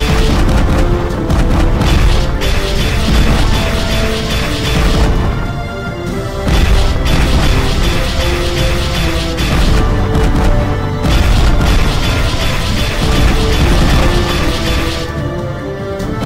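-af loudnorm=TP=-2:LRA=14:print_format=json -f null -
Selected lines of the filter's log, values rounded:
"input_i" : "-14.0",
"input_tp" : "-2.4",
"input_lra" : "1.5",
"input_thresh" : "-24.0",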